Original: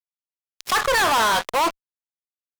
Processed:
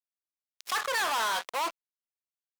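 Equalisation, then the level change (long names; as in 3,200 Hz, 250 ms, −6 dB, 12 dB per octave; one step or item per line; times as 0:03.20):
high-pass filter 700 Hz 6 dB per octave
−8.5 dB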